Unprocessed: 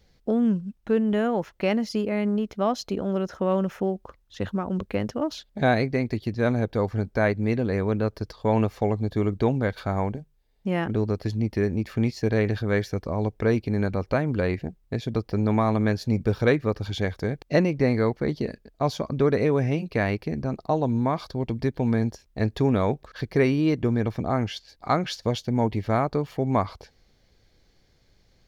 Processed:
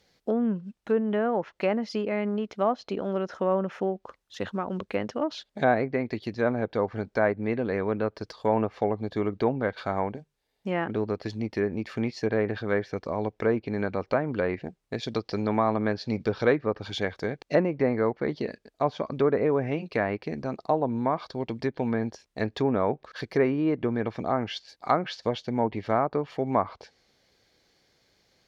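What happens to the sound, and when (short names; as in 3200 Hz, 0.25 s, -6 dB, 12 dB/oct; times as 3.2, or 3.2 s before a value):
15.03–16.66 bell 4800 Hz +9.5 dB 1.2 oct
whole clip: HPF 390 Hz 6 dB/oct; treble ducked by the level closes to 1500 Hz, closed at -22.5 dBFS; gain +1.5 dB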